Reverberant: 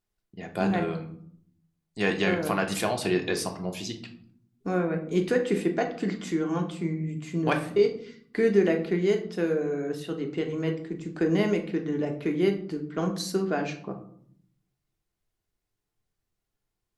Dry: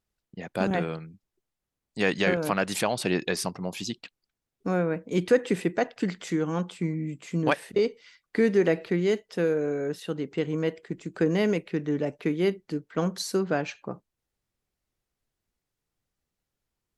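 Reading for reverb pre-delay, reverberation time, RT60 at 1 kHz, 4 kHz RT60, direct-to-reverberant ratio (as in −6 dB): 3 ms, 0.60 s, 0.55 s, 0.35 s, 3.0 dB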